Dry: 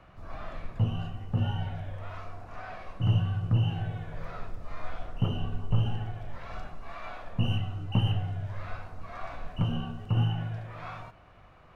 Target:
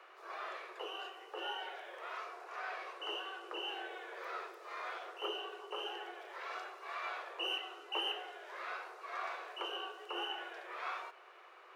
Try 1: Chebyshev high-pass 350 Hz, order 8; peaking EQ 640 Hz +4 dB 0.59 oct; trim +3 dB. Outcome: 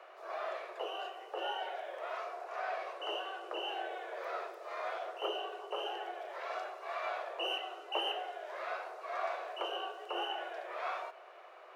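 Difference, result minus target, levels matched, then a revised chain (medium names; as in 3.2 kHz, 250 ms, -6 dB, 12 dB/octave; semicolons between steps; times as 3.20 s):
500 Hz band +4.5 dB
Chebyshev high-pass 350 Hz, order 8; peaking EQ 640 Hz -8 dB 0.59 oct; trim +3 dB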